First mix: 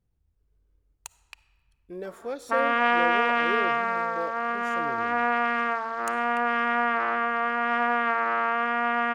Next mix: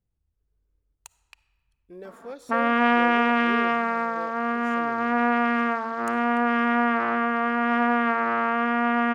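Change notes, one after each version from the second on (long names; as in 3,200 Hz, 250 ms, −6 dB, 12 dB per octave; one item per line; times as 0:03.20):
speech −5.0 dB
background: add parametric band 180 Hz +13.5 dB 1.6 octaves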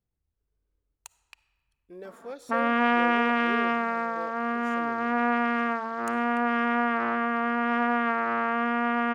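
speech: add low-shelf EQ 180 Hz −6.5 dB
background: send off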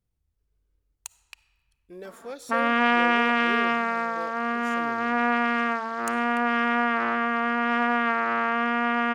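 speech: add low-shelf EQ 180 Hz +6.5 dB
master: add high-shelf EQ 2,100 Hz +8.5 dB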